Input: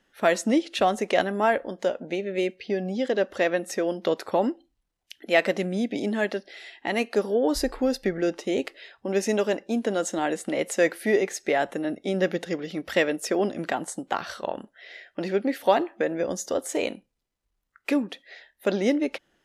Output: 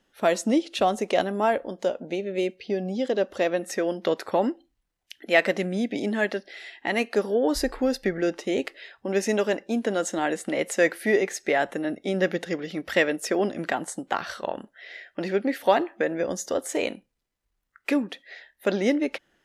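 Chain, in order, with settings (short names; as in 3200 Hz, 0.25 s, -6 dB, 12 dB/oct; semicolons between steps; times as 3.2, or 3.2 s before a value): bell 1800 Hz -5 dB 0.77 oct, from 3.61 s +3 dB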